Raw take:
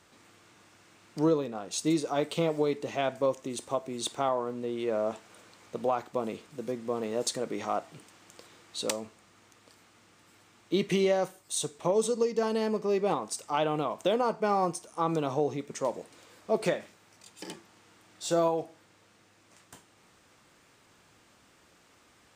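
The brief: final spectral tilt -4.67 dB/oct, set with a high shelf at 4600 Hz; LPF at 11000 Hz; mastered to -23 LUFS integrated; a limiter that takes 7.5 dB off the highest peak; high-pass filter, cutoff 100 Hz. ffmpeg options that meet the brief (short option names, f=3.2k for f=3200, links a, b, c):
-af "highpass=100,lowpass=11k,highshelf=f=4.6k:g=-4.5,volume=11dB,alimiter=limit=-11dB:level=0:latency=1"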